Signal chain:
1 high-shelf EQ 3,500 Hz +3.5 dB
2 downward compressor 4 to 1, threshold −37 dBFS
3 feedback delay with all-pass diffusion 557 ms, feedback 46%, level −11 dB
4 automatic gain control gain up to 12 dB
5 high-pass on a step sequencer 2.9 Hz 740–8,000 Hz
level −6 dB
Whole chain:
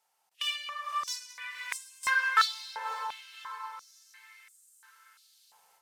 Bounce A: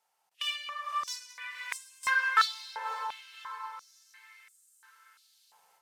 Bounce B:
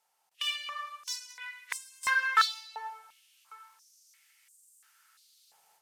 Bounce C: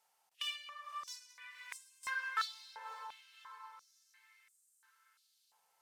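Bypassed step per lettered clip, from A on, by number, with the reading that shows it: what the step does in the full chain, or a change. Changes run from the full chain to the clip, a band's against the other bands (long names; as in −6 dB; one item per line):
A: 1, 8 kHz band −2.5 dB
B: 3, 500 Hz band −3.0 dB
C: 4, change in integrated loudness −11.0 LU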